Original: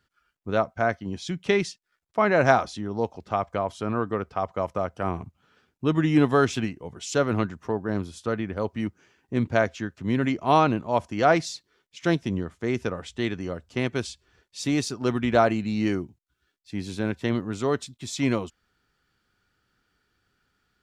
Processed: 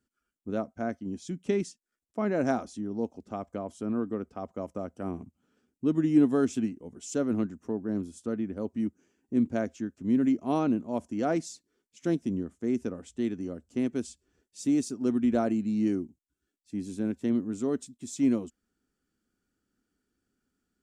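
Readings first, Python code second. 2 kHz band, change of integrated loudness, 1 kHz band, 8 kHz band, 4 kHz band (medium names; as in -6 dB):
-15.0 dB, -4.5 dB, -12.5 dB, -5.0 dB, -14.0 dB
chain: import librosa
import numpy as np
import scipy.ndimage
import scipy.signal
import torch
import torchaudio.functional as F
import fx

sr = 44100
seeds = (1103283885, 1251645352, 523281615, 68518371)

y = fx.graphic_eq_10(x, sr, hz=(125, 250, 1000, 2000, 4000, 8000), db=(-6, 12, -6, -5, -8, 8))
y = y * 10.0 ** (-8.5 / 20.0)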